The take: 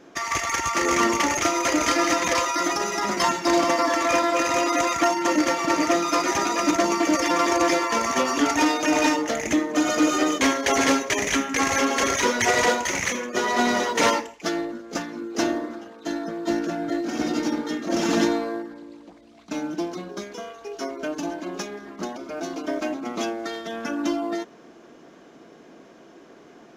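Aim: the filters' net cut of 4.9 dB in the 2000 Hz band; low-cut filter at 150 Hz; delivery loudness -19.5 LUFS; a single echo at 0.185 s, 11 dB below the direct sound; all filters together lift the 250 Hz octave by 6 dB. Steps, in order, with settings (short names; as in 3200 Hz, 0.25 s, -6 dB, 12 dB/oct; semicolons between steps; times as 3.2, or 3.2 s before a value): HPF 150 Hz; bell 250 Hz +8.5 dB; bell 2000 Hz -6 dB; echo 0.185 s -11 dB; gain +1 dB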